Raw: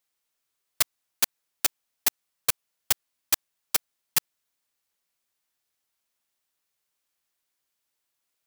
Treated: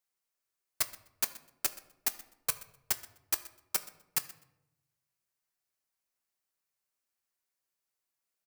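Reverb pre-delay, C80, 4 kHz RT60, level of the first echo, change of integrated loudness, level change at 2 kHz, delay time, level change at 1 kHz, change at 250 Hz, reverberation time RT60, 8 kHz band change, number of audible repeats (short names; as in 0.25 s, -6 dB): 5 ms, 16.0 dB, 0.50 s, -19.5 dB, -7.0 dB, -7.5 dB, 0.126 s, -6.5 dB, -6.5 dB, 0.80 s, -7.0 dB, 2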